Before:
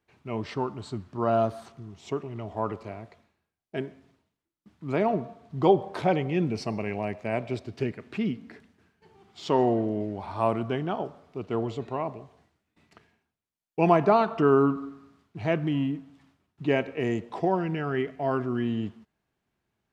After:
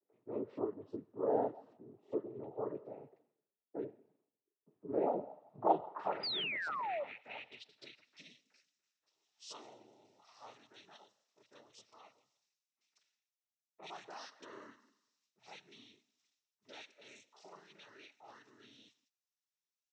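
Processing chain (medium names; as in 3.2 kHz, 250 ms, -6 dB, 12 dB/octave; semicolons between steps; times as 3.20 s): noise-vocoded speech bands 12; band-pass sweep 430 Hz -> 5.9 kHz, 4.90–8.28 s; painted sound fall, 6.19–7.04 s, 540–5000 Hz -35 dBFS; bands offset in time lows, highs 40 ms, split 1.6 kHz; trim -2.5 dB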